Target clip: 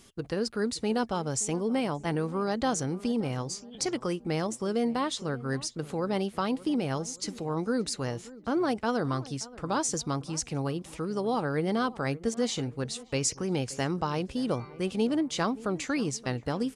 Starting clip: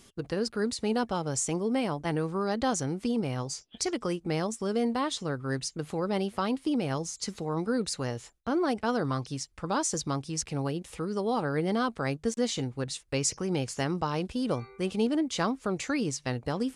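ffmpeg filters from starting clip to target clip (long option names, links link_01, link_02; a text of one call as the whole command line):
ffmpeg -i in.wav -filter_complex "[0:a]asplit=2[link_01][link_02];[link_02]adelay=576,lowpass=frequency=1400:poles=1,volume=-18.5dB,asplit=2[link_03][link_04];[link_04]adelay=576,lowpass=frequency=1400:poles=1,volume=0.46,asplit=2[link_05][link_06];[link_06]adelay=576,lowpass=frequency=1400:poles=1,volume=0.46,asplit=2[link_07][link_08];[link_08]adelay=576,lowpass=frequency=1400:poles=1,volume=0.46[link_09];[link_01][link_03][link_05][link_07][link_09]amix=inputs=5:normalize=0" out.wav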